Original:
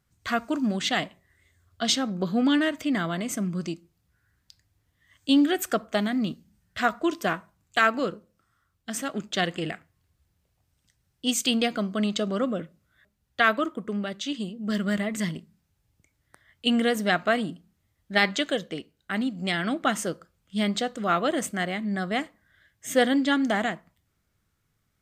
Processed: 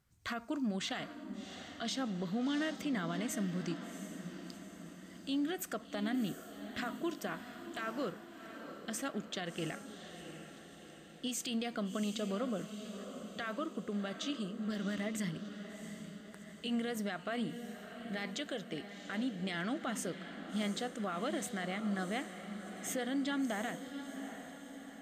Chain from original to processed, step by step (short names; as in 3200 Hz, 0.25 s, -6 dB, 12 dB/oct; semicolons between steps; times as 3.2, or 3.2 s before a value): compressor 1.5:1, threshold -41 dBFS, peak gain reduction 9.5 dB; limiter -26 dBFS, peak gain reduction 11 dB; on a send: diffused feedback echo 0.712 s, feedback 55%, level -9.5 dB; on the sum: gain -2.5 dB